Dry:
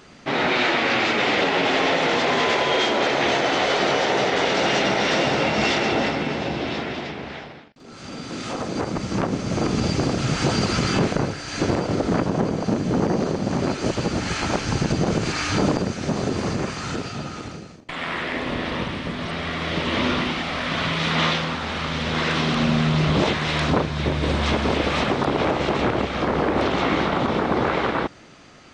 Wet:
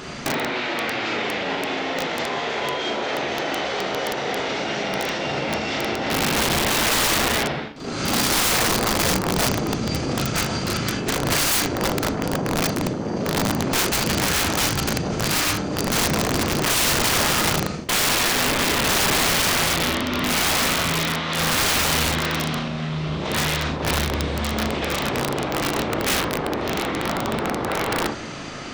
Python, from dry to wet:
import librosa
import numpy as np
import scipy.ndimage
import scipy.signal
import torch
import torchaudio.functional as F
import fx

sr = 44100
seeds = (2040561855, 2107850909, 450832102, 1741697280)

y = fx.over_compress(x, sr, threshold_db=-30.0, ratio=-1.0)
y = fx.room_early_taps(y, sr, ms=(37, 64, 78), db=(-4.0, -10.5, -11.5))
y = (np.mod(10.0 ** (20.0 / 20.0) * y + 1.0, 2.0) - 1.0) / 10.0 ** (20.0 / 20.0)
y = y * librosa.db_to_amplitude(5.5)